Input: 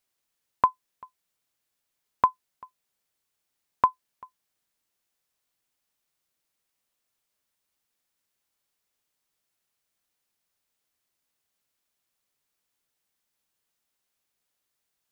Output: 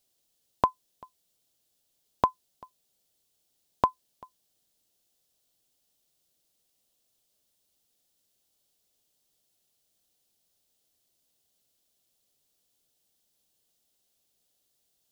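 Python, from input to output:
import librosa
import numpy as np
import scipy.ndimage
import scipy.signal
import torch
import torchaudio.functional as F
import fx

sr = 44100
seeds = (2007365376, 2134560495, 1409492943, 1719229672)

y = fx.band_shelf(x, sr, hz=1500.0, db=-10.5, octaves=1.7)
y = y * 10.0 ** (6.5 / 20.0)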